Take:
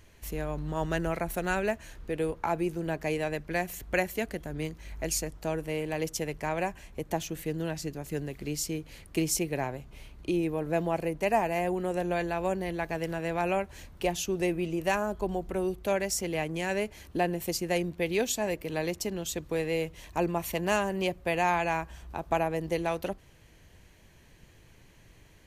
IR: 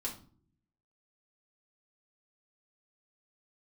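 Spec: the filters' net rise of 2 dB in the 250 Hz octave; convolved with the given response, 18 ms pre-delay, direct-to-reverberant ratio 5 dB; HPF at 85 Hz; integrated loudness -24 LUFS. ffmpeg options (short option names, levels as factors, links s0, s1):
-filter_complex "[0:a]highpass=85,equalizer=f=250:t=o:g=3.5,asplit=2[s0][s1];[1:a]atrim=start_sample=2205,adelay=18[s2];[s1][s2]afir=irnorm=-1:irlink=0,volume=0.501[s3];[s0][s3]amix=inputs=2:normalize=0,volume=1.78"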